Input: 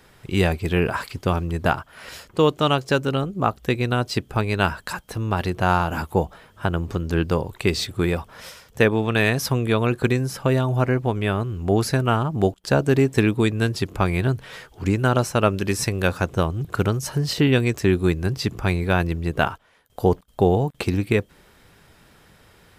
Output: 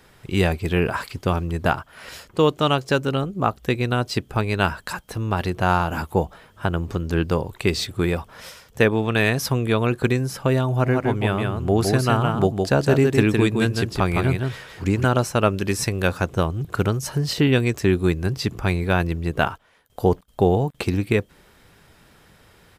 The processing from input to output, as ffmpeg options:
ffmpeg -i in.wav -filter_complex "[0:a]asplit=3[link_01][link_02][link_03];[link_01]afade=type=out:start_time=10.85:duration=0.02[link_04];[link_02]aecho=1:1:162:0.631,afade=type=in:start_time=10.85:duration=0.02,afade=type=out:start_time=15.04:duration=0.02[link_05];[link_03]afade=type=in:start_time=15.04:duration=0.02[link_06];[link_04][link_05][link_06]amix=inputs=3:normalize=0" out.wav

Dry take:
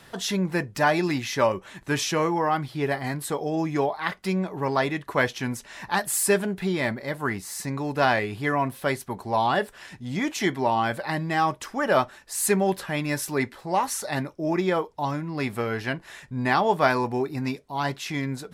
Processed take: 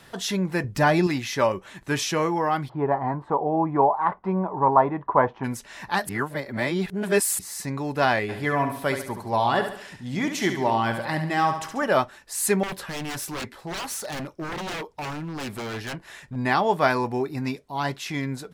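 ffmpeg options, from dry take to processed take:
ffmpeg -i in.wav -filter_complex "[0:a]asettb=1/sr,asplit=3[link_01][link_02][link_03];[link_01]atrim=end=0.644[link_04];[link_02]atrim=start=0.64:end=1.07,asetpts=PTS-STARTPTS,afade=type=in:duration=0.004:curve=qsin,afade=type=out:start_time=0.426:duration=0.004:curve=qsin,lowshelf=frequency=250:gain=10[link_05];[link_03]atrim=start=1.066[link_06];[link_04][link_05]acrossfade=duration=0.004:curve1=hsin:curve2=qsin[link_07];[link_07][link_06]acrossfade=duration=0.004:curve1=qsin:curve2=hsin,asplit=3[link_08][link_09][link_10];[link_08]afade=type=out:start_time=2.68:duration=0.02[link_11];[link_09]lowpass=frequency=960:width_type=q:width=4.2,afade=type=in:start_time=2.68:duration=0.02,afade=type=out:start_time=5.43:duration=0.02[link_12];[link_10]afade=type=in:start_time=5.43:duration=0.02[link_13];[link_11][link_12][link_13]amix=inputs=3:normalize=0,asplit=3[link_14][link_15][link_16];[link_14]afade=type=out:start_time=8.28:duration=0.02[link_17];[link_15]aecho=1:1:70|140|210|280|350:0.398|0.179|0.0806|0.0363|0.0163,afade=type=in:start_time=8.28:duration=0.02,afade=type=out:start_time=11.85:duration=0.02[link_18];[link_16]afade=type=in:start_time=11.85:duration=0.02[link_19];[link_17][link_18][link_19]amix=inputs=3:normalize=0,asettb=1/sr,asplit=3[link_20][link_21][link_22];[link_20]atrim=end=12.634[link_23];[link_21]atrim=start=12.63:end=16.36,asetpts=PTS-STARTPTS,afade=type=in:duration=0.004:curve=qsin,afade=type=out:start_time=3.726:duration=0.004:curve=qsin,aeval=exprs='0.0473*(abs(mod(val(0)/0.0473+3,4)-2)-1)':channel_layout=same[link_24];[link_22]atrim=start=16.356[link_25];[link_23][link_24]acrossfade=duration=0.004:curve1=hsin:curve2=qsin[link_26];[link_26][link_25]acrossfade=duration=0.004:curve1=qsin:curve2=hsin,asplit=3[link_27][link_28][link_29];[link_27]atrim=end=6.092[link_30];[link_28]atrim=start=6.088:end=7.392,asetpts=PTS-STARTPTS,areverse[link_31];[link_29]atrim=start=7.388[link_32];[link_30][link_31]acrossfade=duration=0.004:curve1=hsin:curve2=hsin[link_33];[link_33][link_32]acrossfade=duration=0.004:curve1=hsin:curve2=hsin" out.wav

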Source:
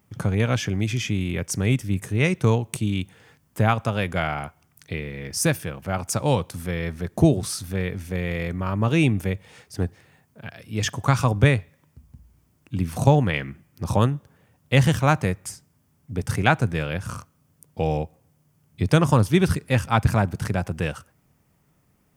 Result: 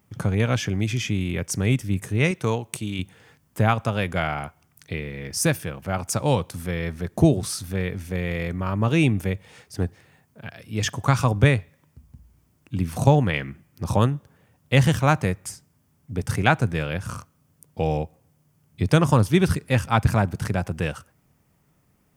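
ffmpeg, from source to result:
ffmpeg -i in.wav -filter_complex "[0:a]asettb=1/sr,asplit=3[link_01][link_02][link_03];[link_01]atrim=end=2.314[link_04];[link_02]atrim=start=2.31:end=2.99,asetpts=PTS-STARTPTS,afade=type=in:duration=0.004:curve=qsin,afade=type=out:start_time=0.676:duration=0.004:curve=qsin,lowshelf=frequency=290:gain=-8[link_05];[link_03]atrim=start=2.986[link_06];[link_04][link_05]acrossfade=duration=0.004:curve1=hsin:curve2=qsin[link_07];[link_07][link_06]acrossfade=duration=0.004:curve1=qsin:curve2=hsin" out.wav

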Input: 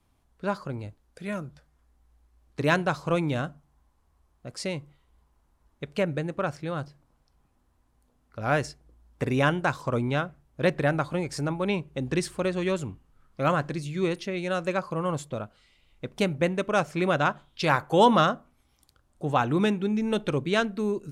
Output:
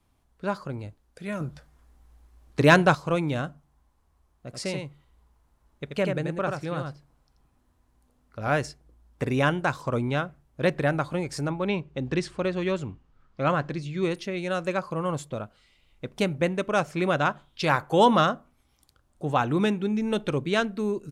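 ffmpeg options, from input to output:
ffmpeg -i in.wav -filter_complex "[0:a]asettb=1/sr,asplit=3[link_01][link_02][link_03];[link_01]atrim=end=1.404[link_04];[link_02]atrim=start=1.4:end=2.95,asetpts=PTS-STARTPTS,afade=type=in:duration=0.004:curve=qsin,afade=type=out:start_time=1.546:duration=0.004:curve=qsin,acontrast=86[link_05];[link_03]atrim=start=2.946[link_06];[link_04][link_05]acrossfade=duration=0.004:curve1=hsin:curve2=qsin[link_07];[link_07][link_06]acrossfade=duration=0.004:curve1=qsin:curve2=hsin,asplit=3[link_08][link_09][link_10];[link_08]afade=type=out:start_time=4.52:duration=0.02[link_11];[link_09]aecho=1:1:84:0.596,afade=type=in:start_time=4.52:duration=0.02,afade=type=out:start_time=8.48:duration=0.02[link_12];[link_10]afade=type=in:start_time=8.48:duration=0.02[link_13];[link_11][link_12][link_13]amix=inputs=3:normalize=0,asettb=1/sr,asplit=3[link_14][link_15][link_16];[link_14]atrim=end=11.504[link_17];[link_15]atrim=start=11.5:end=14.03,asetpts=PTS-STARTPTS,afade=type=in:duration=0.004:curve=qsin,afade=type=out:start_time=2.526:duration=0.004:curve=qsin,lowpass=5500[link_18];[link_16]atrim=start=14.026[link_19];[link_17][link_18]acrossfade=duration=0.004:curve1=hsin:curve2=qsin[link_20];[link_20][link_19]acrossfade=duration=0.004:curve1=qsin:curve2=hsin" out.wav

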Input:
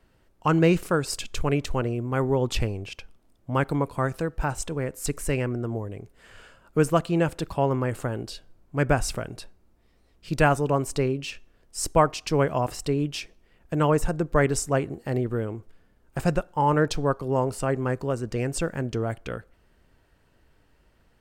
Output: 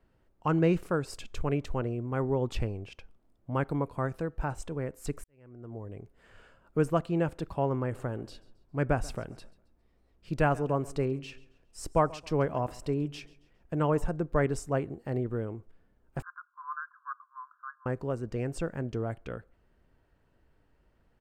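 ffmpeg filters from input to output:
ffmpeg -i in.wav -filter_complex "[0:a]asplit=3[link_01][link_02][link_03];[link_01]afade=type=out:start_time=7.93:duration=0.02[link_04];[link_02]aecho=1:1:136|272|408:0.0891|0.033|0.0122,afade=type=in:start_time=7.93:duration=0.02,afade=type=out:start_time=14.04:duration=0.02[link_05];[link_03]afade=type=in:start_time=14.04:duration=0.02[link_06];[link_04][link_05][link_06]amix=inputs=3:normalize=0,asettb=1/sr,asplit=3[link_07][link_08][link_09];[link_07]atrim=end=16.224[link_10];[link_08]atrim=start=16.22:end=17.86,asetpts=PTS-STARTPTS,afade=type=in:duration=0.004:curve=qsin,afade=type=out:start_time=1.636:duration=0.004:curve=qsin,asuperpass=centerf=1300:order=20:qfactor=2[link_11];[link_09]atrim=start=17.856[link_12];[link_10][link_11]acrossfade=duration=0.004:curve1=hsin:curve2=qsin[link_13];[link_13][link_12]acrossfade=duration=0.004:curve1=qsin:curve2=hsin,asplit=2[link_14][link_15];[link_14]atrim=end=5.24,asetpts=PTS-STARTPTS,afade=type=out:start_time=5.236:duration=0.004:curve=hsin[link_16];[link_15]atrim=start=5.24,asetpts=PTS-STARTPTS,afade=type=in:duration=0.72:curve=qua[link_17];[link_16][link_17]concat=n=2:v=0:a=1,highshelf=frequency=2500:gain=-10,volume=-5dB" out.wav

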